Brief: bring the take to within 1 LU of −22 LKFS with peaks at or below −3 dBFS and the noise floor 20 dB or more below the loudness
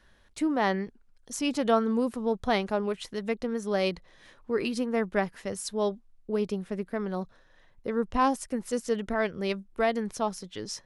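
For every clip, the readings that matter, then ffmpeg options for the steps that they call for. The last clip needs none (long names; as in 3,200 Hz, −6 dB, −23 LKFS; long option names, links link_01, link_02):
integrated loudness −30.0 LKFS; sample peak −10.0 dBFS; target loudness −22.0 LKFS
→ -af "volume=8dB,alimiter=limit=-3dB:level=0:latency=1"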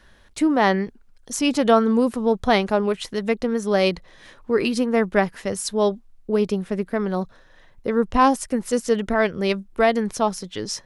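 integrated loudness −22.0 LKFS; sample peak −3.0 dBFS; background noise floor −53 dBFS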